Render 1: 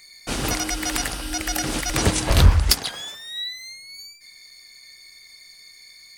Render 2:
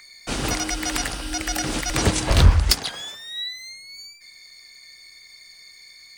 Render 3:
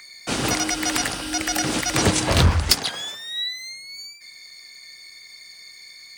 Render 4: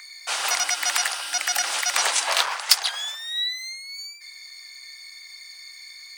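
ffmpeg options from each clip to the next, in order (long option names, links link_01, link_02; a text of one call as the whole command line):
ffmpeg -i in.wav -filter_complex "[0:a]equalizer=frequency=12000:width=2.9:gain=-12,acrossover=split=350|580|2800[link_01][link_02][link_03][link_04];[link_03]acompressor=mode=upward:threshold=-49dB:ratio=2.5[link_05];[link_01][link_02][link_05][link_04]amix=inputs=4:normalize=0" out.wav
ffmpeg -i in.wav -filter_complex "[0:a]highpass=96,asplit=2[link_01][link_02];[link_02]asoftclip=type=tanh:threshold=-14.5dB,volume=-4.5dB[link_03];[link_01][link_03]amix=inputs=2:normalize=0,volume=-1dB" out.wav
ffmpeg -i in.wav -af "highpass=frequency=750:width=0.5412,highpass=frequency=750:width=1.3066,volume=1dB" out.wav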